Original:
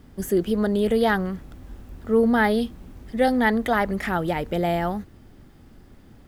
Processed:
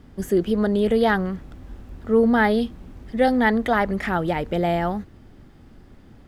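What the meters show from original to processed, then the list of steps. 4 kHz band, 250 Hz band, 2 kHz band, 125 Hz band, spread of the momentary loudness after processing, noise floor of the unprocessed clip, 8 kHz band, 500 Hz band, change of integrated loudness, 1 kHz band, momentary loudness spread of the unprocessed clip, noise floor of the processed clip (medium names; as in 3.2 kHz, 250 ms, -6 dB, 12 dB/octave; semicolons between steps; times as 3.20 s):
0.0 dB, +1.5 dB, +1.0 dB, +1.5 dB, 12 LU, -50 dBFS, no reading, +1.5 dB, +1.5 dB, +1.5 dB, 12 LU, -48 dBFS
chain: treble shelf 8.7 kHz -11 dB; trim +1.5 dB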